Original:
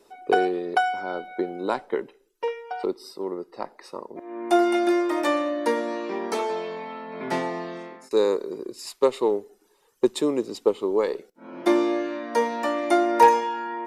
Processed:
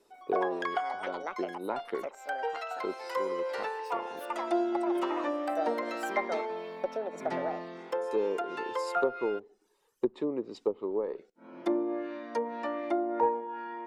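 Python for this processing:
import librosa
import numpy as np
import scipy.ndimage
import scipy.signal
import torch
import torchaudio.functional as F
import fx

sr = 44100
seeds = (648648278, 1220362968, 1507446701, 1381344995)

y = fx.env_lowpass_down(x, sr, base_hz=780.0, full_db=-17.5)
y = fx.echo_pitch(y, sr, ms=140, semitones=7, count=2, db_per_echo=-3.0)
y = y * librosa.db_to_amplitude(-8.5)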